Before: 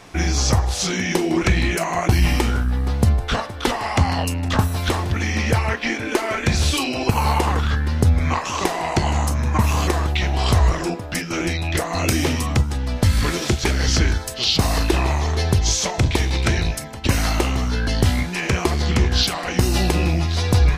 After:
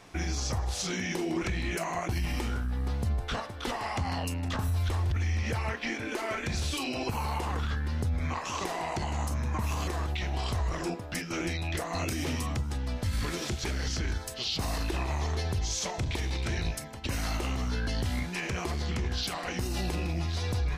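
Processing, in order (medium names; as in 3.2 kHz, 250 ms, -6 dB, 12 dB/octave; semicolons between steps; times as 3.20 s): 4.68–5.43 s: resonant low shelf 110 Hz +9.5 dB, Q 1.5; peak limiter -13.5 dBFS, peak gain reduction 11.5 dB; trim -9 dB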